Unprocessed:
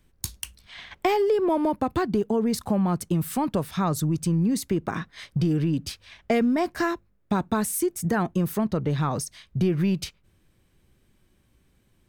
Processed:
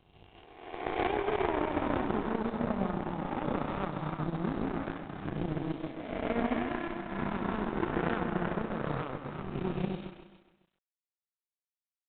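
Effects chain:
peak hold with a rise ahead of every peak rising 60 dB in 2.56 s
low-pass filter 2,300 Hz 6 dB per octave
mains-hum notches 60/120 Hz
on a send: echo with a time of its own for lows and highs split 680 Hz, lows 142 ms, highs 350 ms, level −3 dB
on the sum: power curve on the samples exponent 2
in parallel at −11 dB: comparator with hysteresis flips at −18.5 dBFS
on the sum: repeating echo 139 ms, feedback 50%, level −11.5 dB
amplitude modulation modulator 31 Hz, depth 25%
level −5 dB
G.726 40 kbit/s 8,000 Hz

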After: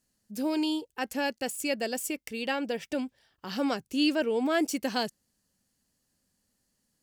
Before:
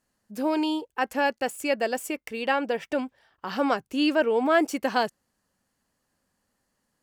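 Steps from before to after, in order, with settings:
drawn EQ curve 210 Hz 0 dB, 1,100 Hz −10 dB, 4,900 Hz +3 dB

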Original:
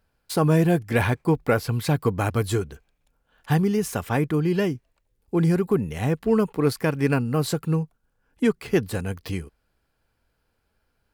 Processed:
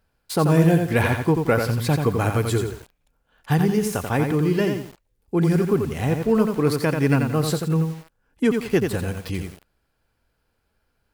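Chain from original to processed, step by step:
feedback echo at a low word length 87 ms, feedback 35%, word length 7 bits, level −5 dB
level +1 dB

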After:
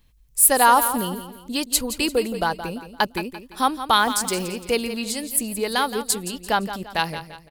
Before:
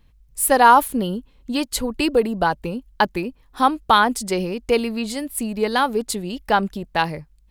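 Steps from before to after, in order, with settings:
high-shelf EQ 3,600 Hz +12 dB
0:03.99–0:04.48: bit-depth reduction 6 bits, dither none
on a send: repeating echo 171 ms, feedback 39%, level −11.5 dB
on the sum: level −4.5 dB

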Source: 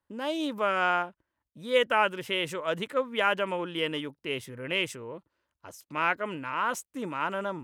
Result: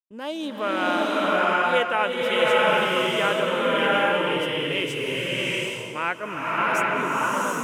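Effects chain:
downward expander −39 dBFS
slow-attack reverb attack 780 ms, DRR −6.5 dB

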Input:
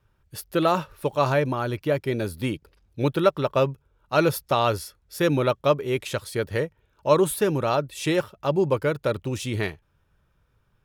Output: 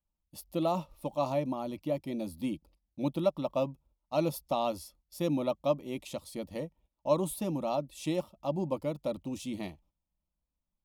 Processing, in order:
noise gate −52 dBFS, range −14 dB
tilt shelving filter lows +3.5 dB, about 650 Hz
phaser with its sweep stopped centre 420 Hz, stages 6
level −6 dB

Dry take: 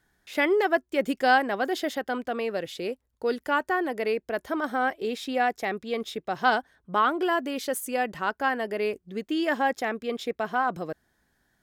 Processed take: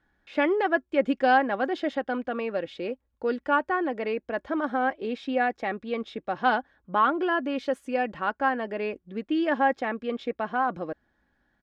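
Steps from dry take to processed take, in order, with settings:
low-pass filter 2,700 Hz 12 dB per octave
notch filter 2,000 Hz, Q 21
comb filter 3.6 ms, depth 34%

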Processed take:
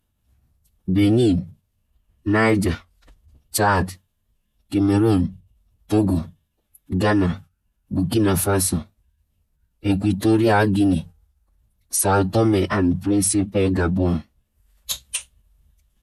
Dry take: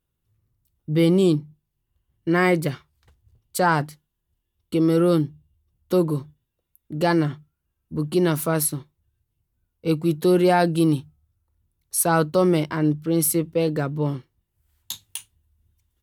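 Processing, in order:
in parallel at −1.5 dB: compressor whose output falls as the input rises −27 dBFS, ratio −1
on the sum: phase-vocoder pitch shift with formants kept −8.5 semitones
wow of a warped record 78 rpm, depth 100 cents

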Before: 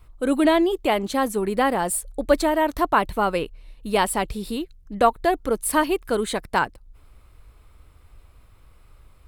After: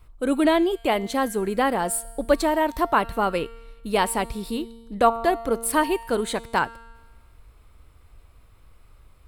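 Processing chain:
tuned comb filter 230 Hz, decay 1.3 s, mix 60%
level +6.5 dB

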